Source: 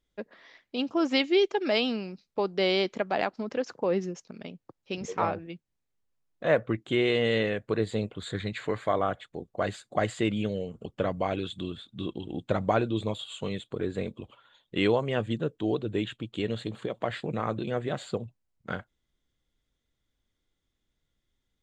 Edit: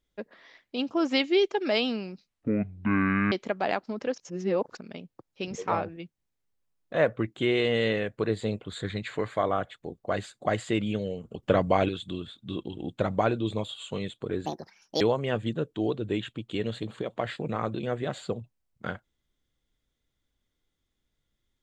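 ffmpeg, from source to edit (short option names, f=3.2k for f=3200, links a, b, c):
-filter_complex "[0:a]asplit=9[a][b][c][d][e][f][g][h][i];[a]atrim=end=2.284[j];[b]atrim=start=2.28:end=2.82,asetpts=PTS-STARTPTS,asetrate=22932,aresample=44100,atrim=end_sample=45796,asetpts=PTS-STARTPTS[k];[c]atrim=start=2.816:end=3.682[l];[d]atrim=start=3.678:end=4.272,asetpts=PTS-STARTPTS,areverse[m];[e]atrim=start=4.268:end=10.932[n];[f]atrim=start=10.928:end=11.392,asetpts=PTS-STARTPTS,volume=6dB[o];[g]atrim=start=11.388:end=13.964[p];[h]atrim=start=13.96:end=14.85,asetpts=PTS-STARTPTS,asetrate=71442,aresample=44100[q];[i]atrim=start=14.846[r];[j][k]acrossfade=d=0.004:c1=hsin:c2=hsin[s];[s][l]acrossfade=d=0.004:c1=hsin:c2=hsin[t];[t][m]acrossfade=d=0.004:c1=hsin:c2=hsin[u];[u][n]acrossfade=d=0.004:c1=hsin:c2=hsin[v];[v][o]acrossfade=d=0.004:c1=hsin:c2=hsin[w];[w][p]acrossfade=d=0.004:c1=hsin:c2=hsin[x];[x][q]acrossfade=d=0.004:c1=hsin:c2=hsin[y];[y][r]acrossfade=d=0.004:c1=hsin:c2=hsin"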